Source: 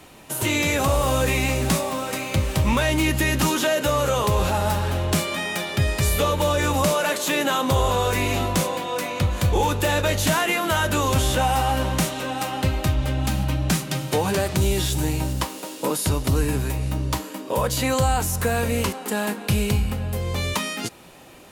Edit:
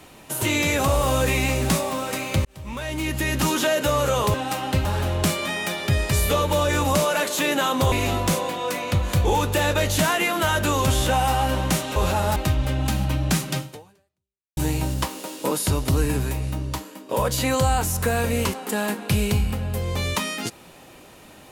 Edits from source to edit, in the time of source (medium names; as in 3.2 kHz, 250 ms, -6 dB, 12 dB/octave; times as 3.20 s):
2.45–3.58 s: fade in
4.34–4.74 s: swap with 12.24–12.75 s
7.81–8.20 s: delete
13.97–14.96 s: fade out exponential
16.61–17.48 s: fade out, to -8.5 dB